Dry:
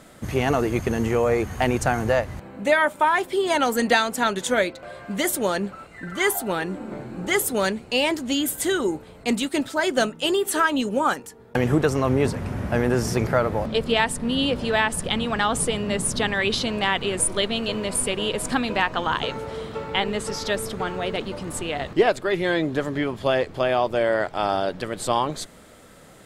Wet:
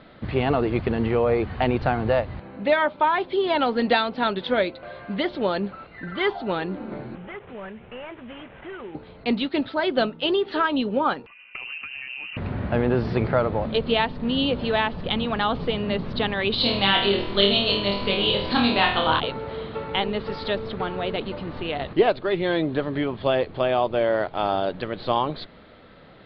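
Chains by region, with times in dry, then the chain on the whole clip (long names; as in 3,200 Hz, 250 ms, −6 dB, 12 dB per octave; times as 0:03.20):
0:07.15–0:08.95: variable-slope delta modulation 16 kbit/s + parametric band 290 Hz −13 dB 0.34 octaves + downward compressor 2.5 to 1, threshold −39 dBFS
0:11.26–0:12.37: downward compressor 5 to 1, threshold −33 dBFS + voice inversion scrambler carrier 2,900 Hz
0:16.58–0:19.20: low-pass with resonance 4,500 Hz, resonance Q 2.7 + flutter between parallel walls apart 4.3 metres, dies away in 0.53 s
whole clip: dynamic equaliser 1,800 Hz, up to −5 dB, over −36 dBFS, Q 1.9; Butterworth low-pass 4,400 Hz 72 dB per octave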